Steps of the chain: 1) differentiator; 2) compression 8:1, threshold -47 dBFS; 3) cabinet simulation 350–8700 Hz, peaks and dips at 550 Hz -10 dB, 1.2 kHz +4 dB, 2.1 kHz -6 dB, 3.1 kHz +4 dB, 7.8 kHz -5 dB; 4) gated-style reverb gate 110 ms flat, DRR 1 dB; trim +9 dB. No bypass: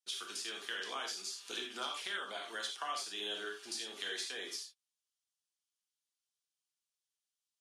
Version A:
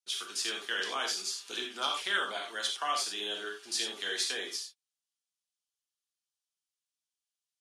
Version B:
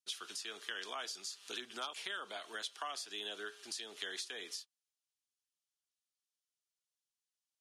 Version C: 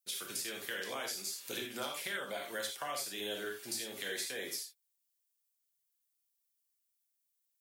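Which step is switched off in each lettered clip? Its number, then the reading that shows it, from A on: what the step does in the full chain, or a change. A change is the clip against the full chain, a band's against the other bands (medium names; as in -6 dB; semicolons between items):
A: 2, mean gain reduction 5.0 dB; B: 4, crest factor change +2.5 dB; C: 3, loudness change +1.0 LU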